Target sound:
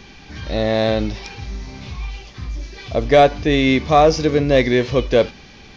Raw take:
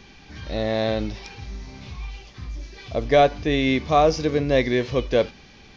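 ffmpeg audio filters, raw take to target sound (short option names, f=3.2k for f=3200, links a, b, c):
-af "acontrast=45"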